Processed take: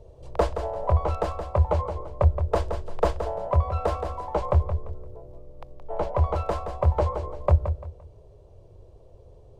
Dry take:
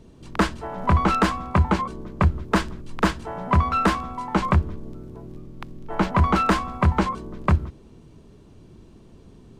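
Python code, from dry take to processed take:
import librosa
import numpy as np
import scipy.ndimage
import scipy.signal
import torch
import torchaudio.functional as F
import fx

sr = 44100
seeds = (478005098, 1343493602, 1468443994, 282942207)

y = fx.echo_feedback(x, sr, ms=172, feedback_pct=29, wet_db=-9)
y = fx.rider(y, sr, range_db=4, speed_s=0.5)
y = fx.curve_eq(y, sr, hz=(100.0, 240.0, 540.0, 1500.0, 4800.0), db=(0, -24, 8, -16, -12))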